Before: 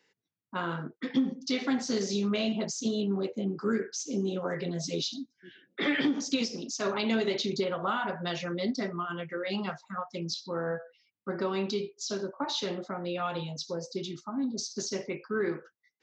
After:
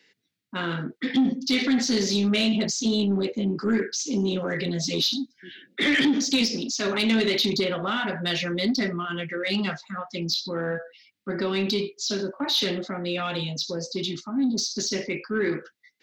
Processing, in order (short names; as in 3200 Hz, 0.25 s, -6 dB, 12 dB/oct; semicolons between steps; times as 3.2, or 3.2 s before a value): graphic EQ 250/1000/2000/4000 Hz +6/-6/+7/+8 dB; transient shaper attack -2 dB, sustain +3 dB; soft clip -18 dBFS, distortion -19 dB; gain +3.5 dB